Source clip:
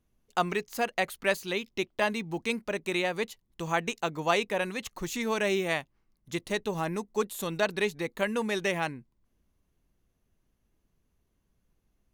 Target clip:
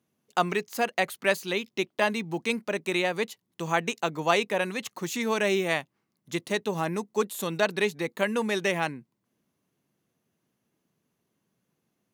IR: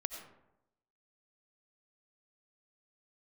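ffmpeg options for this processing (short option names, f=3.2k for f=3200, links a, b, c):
-af "highpass=f=130:w=0.5412,highpass=f=130:w=1.3066,volume=2.5dB"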